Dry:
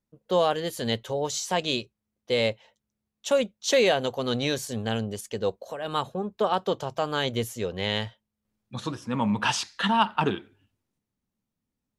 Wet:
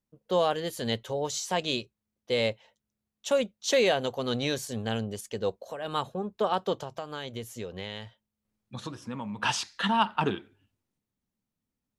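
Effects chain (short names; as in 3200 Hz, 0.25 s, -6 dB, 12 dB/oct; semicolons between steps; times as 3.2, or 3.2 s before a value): 6.75–9.43 compressor 6:1, threshold -31 dBFS, peak gain reduction 10 dB; gain -2.5 dB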